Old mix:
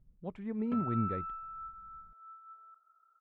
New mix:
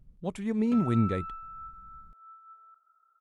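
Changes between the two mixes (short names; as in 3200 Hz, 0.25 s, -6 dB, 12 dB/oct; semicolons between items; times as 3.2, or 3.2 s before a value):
speech +7.5 dB; master: remove LPF 2000 Hz 12 dB/oct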